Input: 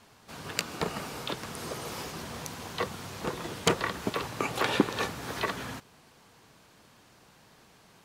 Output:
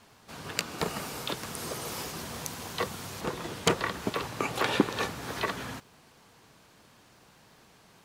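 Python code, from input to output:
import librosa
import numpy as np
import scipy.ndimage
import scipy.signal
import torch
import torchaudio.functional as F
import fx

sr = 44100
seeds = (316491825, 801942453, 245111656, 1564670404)

y = fx.high_shelf(x, sr, hz=6500.0, db=7.0, at=(0.78, 3.21))
y = fx.dmg_crackle(y, sr, seeds[0], per_s=140.0, level_db=-58.0)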